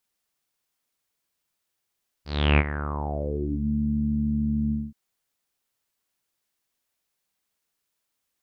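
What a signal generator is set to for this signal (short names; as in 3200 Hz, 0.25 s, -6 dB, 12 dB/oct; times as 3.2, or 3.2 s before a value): synth note saw D2 24 dB/oct, low-pass 220 Hz, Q 6.3, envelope 4.5 oct, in 1.40 s, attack 0.333 s, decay 0.05 s, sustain -13 dB, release 0.22 s, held 2.46 s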